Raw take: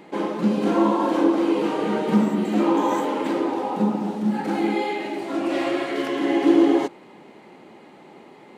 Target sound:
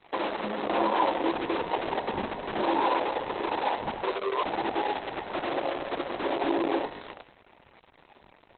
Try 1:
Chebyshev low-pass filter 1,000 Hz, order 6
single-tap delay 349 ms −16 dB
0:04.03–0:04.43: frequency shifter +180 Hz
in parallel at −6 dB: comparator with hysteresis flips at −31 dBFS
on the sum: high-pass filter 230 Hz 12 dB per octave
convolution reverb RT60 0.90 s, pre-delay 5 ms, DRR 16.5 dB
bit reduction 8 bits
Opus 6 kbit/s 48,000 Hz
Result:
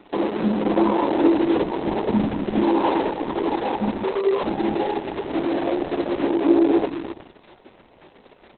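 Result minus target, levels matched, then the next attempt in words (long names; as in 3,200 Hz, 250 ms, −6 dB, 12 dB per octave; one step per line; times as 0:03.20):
250 Hz band +5.5 dB
Chebyshev low-pass filter 1,000 Hz, order 6
single-tap delay 349 ms −16 dB
0:04.03–0:04.43: frequency shifter +180 Hz
in parallel at −6 dB: comparator with hysteresis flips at −31 dBFS
on the sum: high-pass filter 650 Hz 12 dB per octave
convolution reverb RT60 0.90 s, pre-delay 5 ms, DRR 16.5 dB
bit reduction 8 bits
Opus 6 kbit/s 48,000 Hz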